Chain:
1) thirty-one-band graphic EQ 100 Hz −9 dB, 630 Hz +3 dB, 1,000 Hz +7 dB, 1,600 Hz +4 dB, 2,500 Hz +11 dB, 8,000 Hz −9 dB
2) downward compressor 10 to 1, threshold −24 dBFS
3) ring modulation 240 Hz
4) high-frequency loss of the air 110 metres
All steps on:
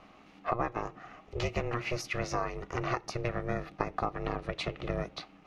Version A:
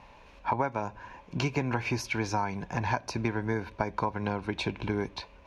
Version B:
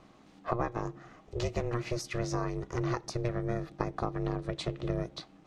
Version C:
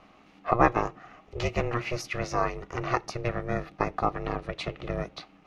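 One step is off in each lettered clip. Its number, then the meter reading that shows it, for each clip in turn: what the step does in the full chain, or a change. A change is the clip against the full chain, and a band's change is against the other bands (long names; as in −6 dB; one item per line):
3, change in crest factor −3.0 dB
1, 2 kHz band −6.0 dB
2, average gain reduction 2.5 dB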